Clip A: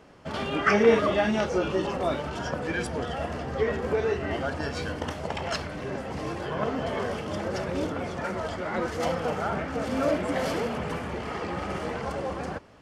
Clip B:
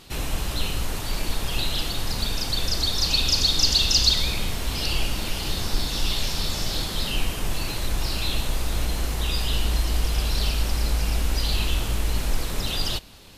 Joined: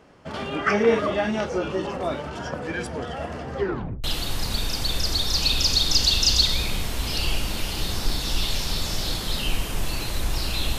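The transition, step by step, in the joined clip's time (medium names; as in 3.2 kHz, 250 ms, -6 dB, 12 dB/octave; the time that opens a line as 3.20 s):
clip A
3.59 s: tape stop 0.45 s
4.04 s: go over to clip B from 1.72 s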